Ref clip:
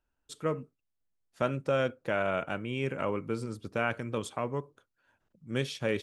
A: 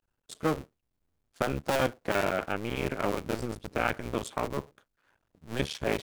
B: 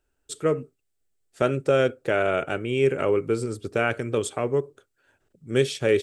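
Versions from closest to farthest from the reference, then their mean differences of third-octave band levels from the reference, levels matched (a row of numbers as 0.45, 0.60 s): B, A; 2.0, 7.5 dB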